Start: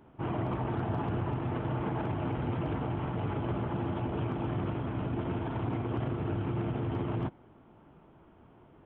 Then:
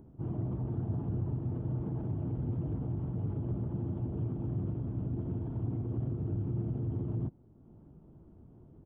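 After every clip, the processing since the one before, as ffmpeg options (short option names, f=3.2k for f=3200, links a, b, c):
-af "bass=f=250:g=9,treble=f=4k:g=14,acompressor=mode=upward:threshold=-39dB:ratio=2.5,firequalizer=gain_entry='entry(360,0);entry(910,-10);entry(2300,-21)':delay=0.05:min_phase=1,volume=-8dB"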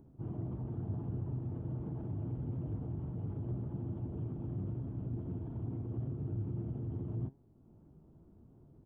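-af "flanger=delay=7.1:depth=6:regen=84:speed=0.81:shape=sinusoidal"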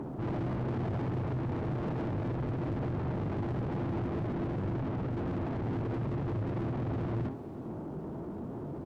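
-filter_complex "[0:a]asoftclip=type=hard:threshold=-35dB,asplit=2[a][b];[b]highpass=f=720:p=1,volume=34dB,asoftclip=type=tanh:threshold=-35dB[c];[a][c]amix=inputs=2:normalize=0,lowpass=f=1.2k:p=1,volume=-6dB,aecho=1:1:62|456:0.237|0.15,volume=6.5dB"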